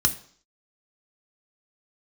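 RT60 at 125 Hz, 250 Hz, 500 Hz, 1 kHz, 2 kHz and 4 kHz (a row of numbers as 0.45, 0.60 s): 0.45, 0.55, 0.55, 0.55, 0.50, 0.60 s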